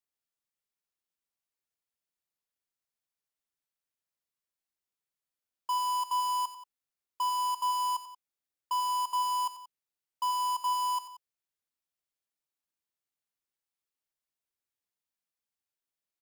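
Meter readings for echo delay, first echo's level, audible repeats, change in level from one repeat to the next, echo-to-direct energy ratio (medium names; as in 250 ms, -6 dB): 90 ms, -12.5 dB, 2, -6.0 dB, -11.5 dB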